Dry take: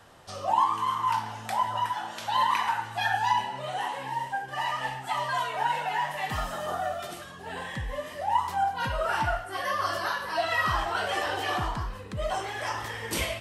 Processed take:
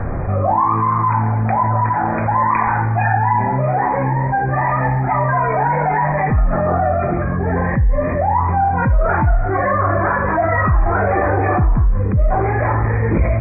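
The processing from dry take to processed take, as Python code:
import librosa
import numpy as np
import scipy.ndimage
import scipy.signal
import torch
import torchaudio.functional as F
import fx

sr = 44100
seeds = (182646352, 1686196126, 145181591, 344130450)

y = fx.brickwall_lowpass(x, sr, high_hz=2500.0)
y = fx.tilt_eq(y, sr, slope=-4.5)
y = fx.notch(y, sr, hz=920.0, q=18.0)
y = fx.env_flatten(y, sr, amount_pct=70)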